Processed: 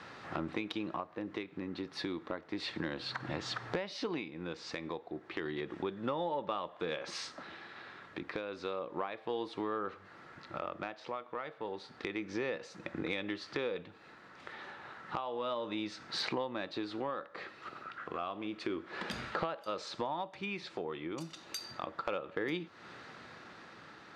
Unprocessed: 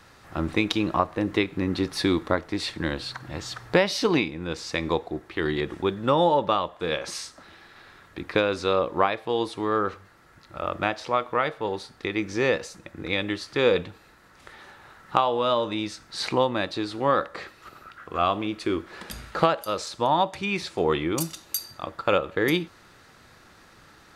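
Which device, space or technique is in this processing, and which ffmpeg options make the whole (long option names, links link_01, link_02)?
AM radio: -af "highpass=150,lowpass=4000,acompressor=threshold=-38dB:ratio=5,asoftclip=type=tanh:threshold=-22.5dB,tremolo=f=0.31:d=0.37,volume=4dB"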